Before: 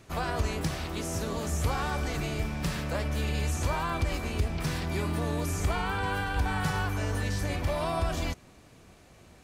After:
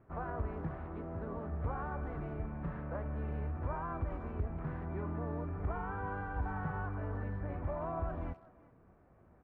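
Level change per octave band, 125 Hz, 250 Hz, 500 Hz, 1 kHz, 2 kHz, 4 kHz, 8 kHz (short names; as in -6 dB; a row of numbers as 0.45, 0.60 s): -8.0 dB, -8.0 dB, -8.0 dB, -8.0 dB, -13.0 dB, under -35 dB, under -40 dB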